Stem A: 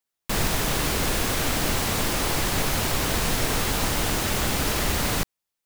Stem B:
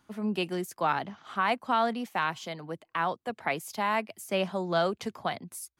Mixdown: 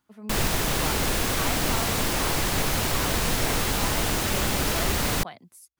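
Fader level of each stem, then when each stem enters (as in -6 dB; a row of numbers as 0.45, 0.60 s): -0.5, -9.0 dB; 0.00, 0.00 s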